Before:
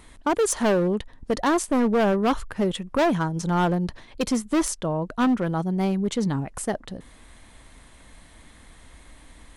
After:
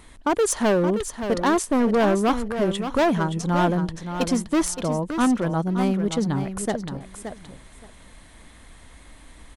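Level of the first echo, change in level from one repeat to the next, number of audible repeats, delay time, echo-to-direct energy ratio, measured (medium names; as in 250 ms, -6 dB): -9.0 dB, -15.5 dB, 2, 572 ms, -9.0 dB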